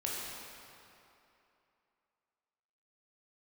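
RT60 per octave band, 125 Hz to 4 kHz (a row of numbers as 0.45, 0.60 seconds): 2.4, 2.7, 2.8, 2.9, 2.6, 2.1 seconds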